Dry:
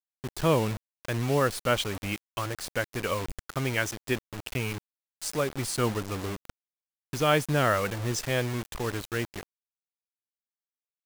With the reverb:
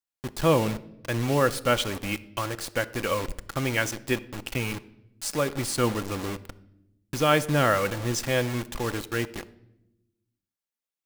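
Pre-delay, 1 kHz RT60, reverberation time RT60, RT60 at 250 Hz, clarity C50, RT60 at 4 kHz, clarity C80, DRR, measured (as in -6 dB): 4 ms, 0.70 s, 0.85 s, 1.5 s, 18.0 dB, 0.70 s, 21.0 dB, 10.5 dB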